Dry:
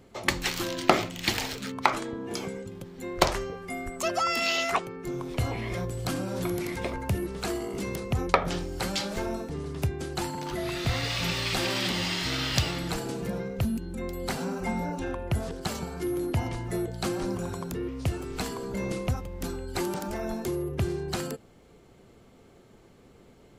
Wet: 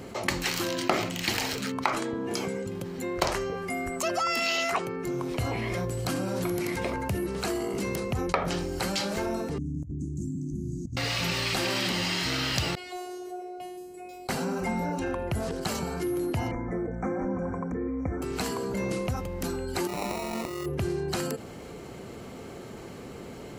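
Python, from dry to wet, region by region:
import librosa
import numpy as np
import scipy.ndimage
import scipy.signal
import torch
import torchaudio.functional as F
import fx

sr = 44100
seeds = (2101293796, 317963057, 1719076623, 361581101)

y = fx.chain(x, sr, fx.cheby1_bandstop(low_hz=300.0, high_hz=6500.0, order=5),
    fx.over_compress(threshold_db=-35.0, ratio=-0.5),
    fx.air_absorb(metres=160.0), at=(9.58, 10.97))
y = fx.chain(y, sr, fx.band_shelf(hz=530.0, db=12.0, octaves=1.1),
    fx.comb_fb(f0_hz=240.0, decay_s=0.64, harmonics='all', damping=0.0, mix_pct=100),
    fx.robotise(hz=360.0), at=(12.75, 14.29))
y = fx.chain(y, sr, fx.brickwall_bandstop(low_hz=2400.0, high_hz=5500.0),
    fx.spacing_loss(db_at_10k=34),
    fx.comb(ms=3.9, depth=0.62), at=(16.51, 18.22))
y = fx.chain(y, sr, fx.low_shelf(hz=460.0, db=-6.0),
    fx.over_compress(threshold_db=-37.0, ratio=-0.5),
    fx.sample_hold(seeds[0], rate_hz=1600.0, jitter_pct=0), at=(19.87, 20.66))
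y = fx.highpass(y, sr, hz=88.0, slope=6)
y = fx.notch(y, sr, hz=3500.0, q=14.0)
y = fx.env_flatten(y, sr, amount_pct=50)
y = F.gain(torch.from_numpy(y), -6.0).numpy()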